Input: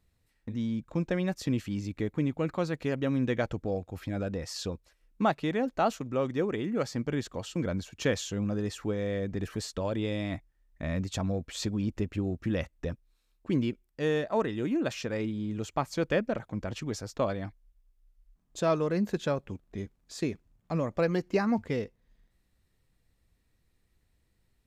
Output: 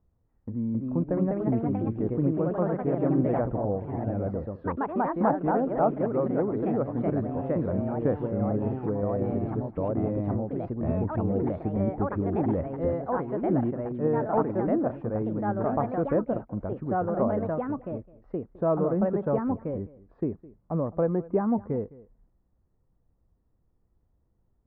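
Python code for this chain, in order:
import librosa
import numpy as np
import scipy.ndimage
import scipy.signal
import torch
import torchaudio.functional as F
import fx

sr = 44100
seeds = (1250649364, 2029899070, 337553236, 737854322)

y = scipy.signal.sosfilt(scipy.signal.butter(4, 1100.0, 'lowpass', fs=sr, output='sos'), x)
y = fx.echo_pitch(y, sr, ms=321, semitones=2, count=3, db_per_echo=-3.0)
y = y + 10.0 ** (-20.5 / 20.0) * np.pad(y, (int(210 * sr / 1000.0), 0))[:len(y)]
y = y * 10.0 ** (2.0 / 20.0)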